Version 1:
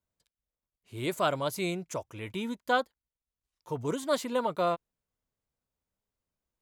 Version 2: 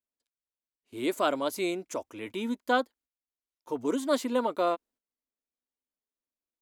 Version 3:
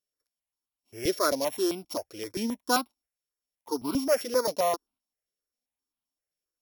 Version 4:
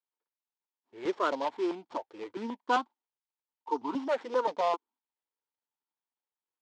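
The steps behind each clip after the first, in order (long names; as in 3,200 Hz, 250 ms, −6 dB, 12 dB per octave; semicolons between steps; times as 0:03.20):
low shelf with overshoot 200 Hz −8.5 dB, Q 3; noise gate −58 dBFS, range −11 dB
samples sorted by size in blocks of 8 samples; step-sequenced phaser 7.6 Hz 260–1,800 Hz; level +4 dB
running median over 15 samples; loudspeaker in its box 300–6,300 Hz, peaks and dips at 610 Hz −6 dB, 900 Hz +10 dB, 3,200 Hz +5 dB, 5,600 Hz −6 dB; level −1.5 dB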